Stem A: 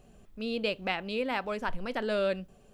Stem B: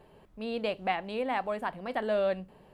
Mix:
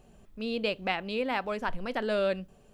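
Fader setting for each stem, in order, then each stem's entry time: -0.5, -13.5 dB; 0.00, 0.00 s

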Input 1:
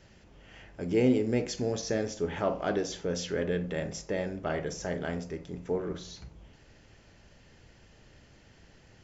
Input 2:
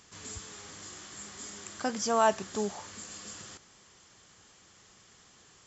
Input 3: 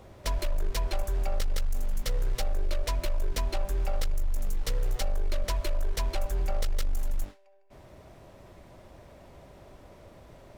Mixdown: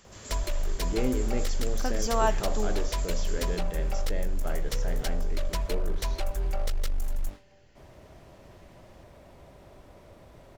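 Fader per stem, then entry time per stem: -5.0, -1.5, -0.5 dB; 0.00, 0.00, 0.05 s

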